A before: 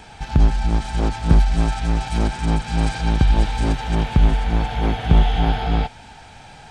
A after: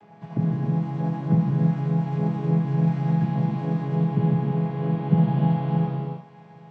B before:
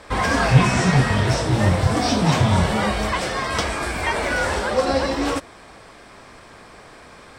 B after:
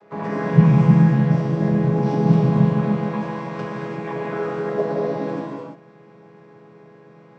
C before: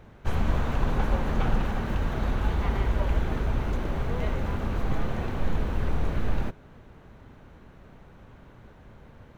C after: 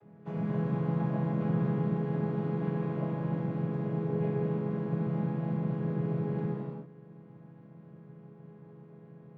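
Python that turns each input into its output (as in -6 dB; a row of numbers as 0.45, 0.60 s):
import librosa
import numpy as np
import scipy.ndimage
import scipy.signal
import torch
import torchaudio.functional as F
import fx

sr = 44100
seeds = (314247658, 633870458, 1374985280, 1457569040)

y = fx.chord_vocoder(x, sr, chord='minor triad', root=49)
y = fx.high_shelf(y, sr, hz=2600.0, db=-11.5)
y = fx.rev_gated(y, sr, seeds[0], gate_ms=370, shape='flat', drr_db=-2.5)
y = F.gain(torch.from_numpy(y), -2.0).numpy()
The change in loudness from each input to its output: -3.5, 0.0, -2.5 LU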